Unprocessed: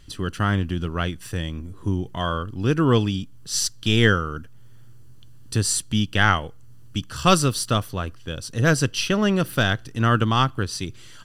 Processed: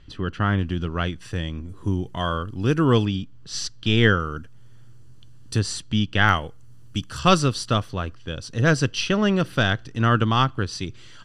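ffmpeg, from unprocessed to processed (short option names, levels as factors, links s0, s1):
-af "asetnsamples=n=441:p=0,asendcmd='0.59 lowpass f 5800;1.69 lowpass f 11000;3.05 lowpass f 4300;4.2 lowpass f 9000;5.59 lowpass f 4600;6.29 lowpass f 11000;7.19 lowpass f 5800',lowpass=3300"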